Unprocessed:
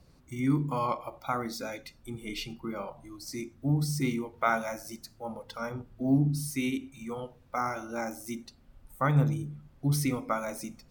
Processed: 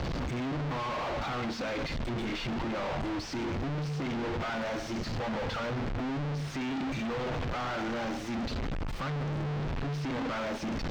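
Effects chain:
sign of each sample alone
high-frequency loss of the air 190 metres

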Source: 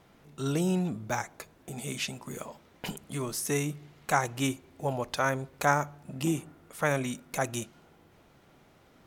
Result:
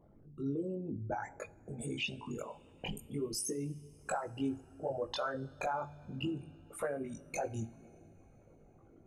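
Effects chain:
spectral envelope exaggerated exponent 3
downward compressor 4 to 1, threshold −31 dBFS, peak gain reduction 10.5 dB
flanger 1.3 Hz, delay 4.1 ms, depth 2.1 ms, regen +86%
coupled-rooms reverb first 0.36 s, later 4.6 s, from −18 dB, DRR 14.5 dB
multi-voice chorus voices 6, 0.23 Hz, delay 20 ms, depth 2 ms
level +5.5 dB

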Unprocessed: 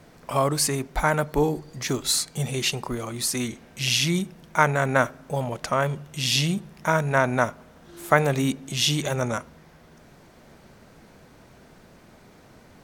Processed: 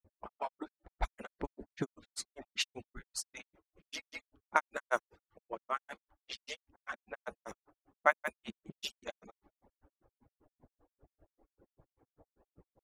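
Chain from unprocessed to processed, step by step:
harmonic-percussive split with one part muted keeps percussive
low-pass that shuts in the quiet parts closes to 710 Hz, open at −20 dBFS
granular cloud 100 ms, grains 5.1 per second, pitch spread up and down by 0 semitones
level −5.5 dB

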